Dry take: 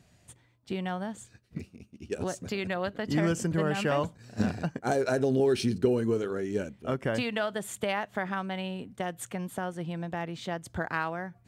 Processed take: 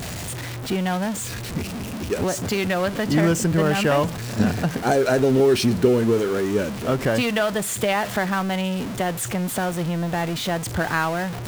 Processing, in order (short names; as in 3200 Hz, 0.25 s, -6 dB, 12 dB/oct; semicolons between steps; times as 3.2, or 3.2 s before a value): zero-crossing step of -32 dBFS; gain +6.5 dB